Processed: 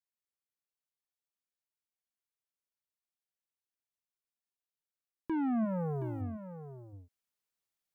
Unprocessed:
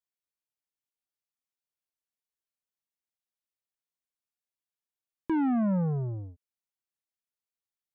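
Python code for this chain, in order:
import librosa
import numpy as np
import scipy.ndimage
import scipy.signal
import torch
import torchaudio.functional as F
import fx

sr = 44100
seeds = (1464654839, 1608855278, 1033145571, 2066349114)

y = fx.bass_treble(x, sr, bass_db=-10, treble_db=14, at=(5.64, 6.2), fade=0.02)
y = fx.rider(y, sr, range_db=10, speed_s=0.5)
y = y + 10.0 ** (-11.5 / 20.0) * np.pad(y, (int(721 * sr / 1000.0), 0))[:len(y)]
y = y * 10.0 ** (-2.5 / 20.0)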